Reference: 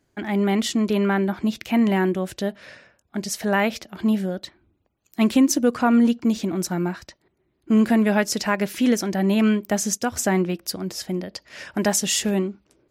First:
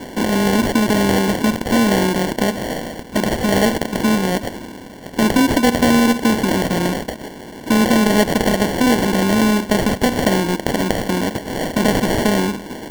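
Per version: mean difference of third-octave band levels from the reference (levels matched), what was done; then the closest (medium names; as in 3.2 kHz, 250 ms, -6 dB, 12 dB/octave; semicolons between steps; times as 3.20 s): 13.5 dB: spectral levelling over time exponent 0.4; sample-and-hold 35×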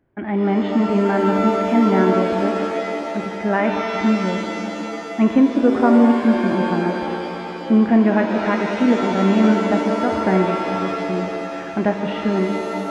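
9.5 dB: Gaussian low-pass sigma 3.9 samples; pitch-shifted reverb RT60 3.1 s, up +7 st, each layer -2 dB, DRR 4.5 dB; trim +2.5 dB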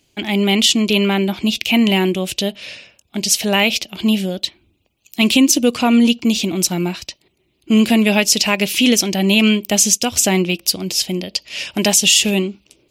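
4.5 dB: resonant high shelf 2.1 kHz +8.5 dB, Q 3; loudness maximiser +5.5 dB; trim -1 dB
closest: third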